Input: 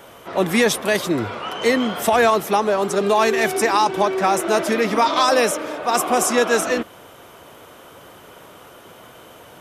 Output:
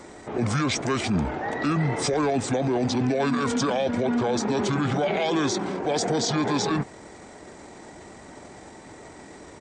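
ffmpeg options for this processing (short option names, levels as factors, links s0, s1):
-af "alimiter=limit=0.158:level=0:latency=1:release=16,asetrate=27781,aresample=44100,atempo=1.5874"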